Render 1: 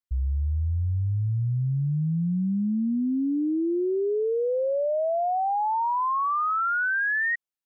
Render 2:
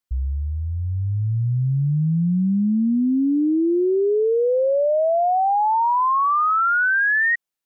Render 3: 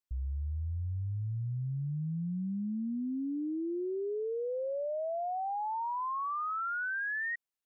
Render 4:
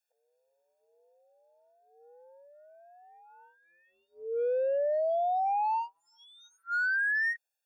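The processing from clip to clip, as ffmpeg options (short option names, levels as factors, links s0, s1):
-af "equalizer=f=80:t=o:w=0.77:g=-6.5,volume=2.11"
-af "alimiter=limit=0.0708:level=0:latency=1:release=22,volume=0.376"
-filter_complex "[0:a]asplit=2[s0][s1];[s1]asoftclip=type=tanh:threshold=0.0106,volume=0.501[s2];[s0][s2]amix=inputs=2:normalize=0,afftfilt=real='re*eq(mod(floor(b*sr/1024/470),2),1)':imag='im*eq(mod(floor(b*sr/1024/470),2),1)':win_size=1024:overlap=0.75,volume=1.68"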